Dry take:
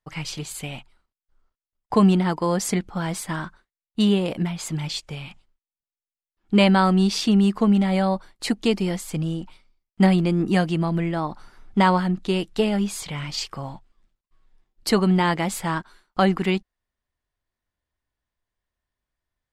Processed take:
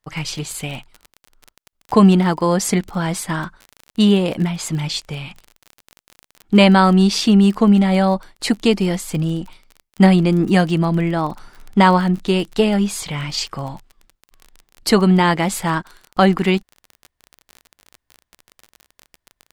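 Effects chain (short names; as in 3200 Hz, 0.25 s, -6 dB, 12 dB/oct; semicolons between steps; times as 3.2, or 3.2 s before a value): crackle 30/s -32 dBFS; gain +5.5 dB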